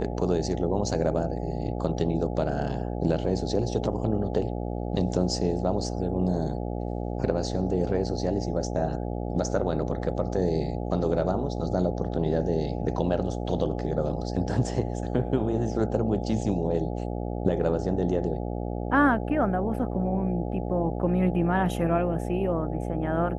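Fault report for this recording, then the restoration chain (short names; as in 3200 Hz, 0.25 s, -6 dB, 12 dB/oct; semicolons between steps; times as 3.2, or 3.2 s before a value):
buzz 60 Hz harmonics 14 -31 dBFS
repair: de-hum 60 Hz, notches 14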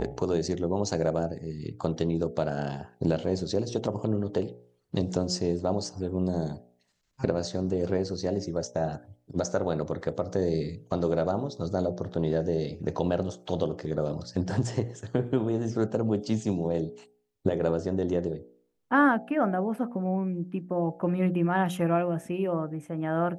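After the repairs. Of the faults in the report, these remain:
none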